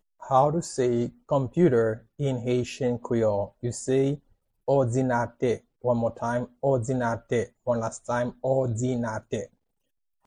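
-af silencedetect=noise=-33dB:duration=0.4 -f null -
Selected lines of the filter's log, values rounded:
silence_start: 4.15
silence_end: 4.68 | silence_duration: 0.53
silence_start: 9.44
silence_end: 10.26 | silence_duration: 0.82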